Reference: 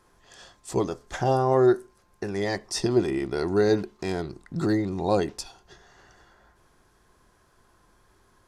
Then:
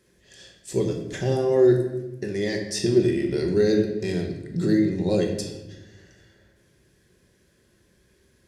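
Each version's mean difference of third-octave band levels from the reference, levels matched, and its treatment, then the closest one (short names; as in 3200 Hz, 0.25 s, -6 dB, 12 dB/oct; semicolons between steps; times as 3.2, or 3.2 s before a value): 5.5 dB: HPF 64 Hz; band shelf 980 Hz -15 dB 1.2 oct; shoebox room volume 440 m³, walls mixed, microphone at 1.1 m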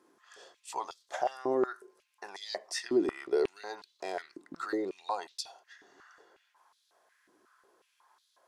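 8.0 dB: compressor 6:1, threshold -22 dBFS, peak gain reduction 7.5 dB; stepped high-pass 5.5 Hz 300–3800 Hz; gain -7.5 dB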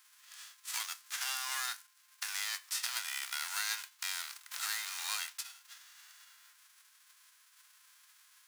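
22.0 dB: spectral whitening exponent 0.3; compressor 2.5:1, threshold -33 dBFS, peak gain reduction 13 dB; HPF 1200 Hz 24 dB/oct; gain -1.5 dB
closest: first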